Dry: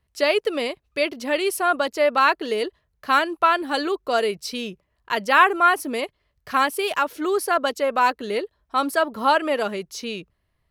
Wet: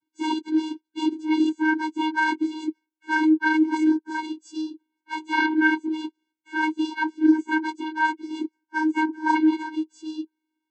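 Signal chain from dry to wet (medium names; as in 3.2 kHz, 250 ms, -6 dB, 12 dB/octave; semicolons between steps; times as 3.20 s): frequency axis rescaled in octaves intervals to 114%; vocoder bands 16, square 313 Hz; trim +2.5 dB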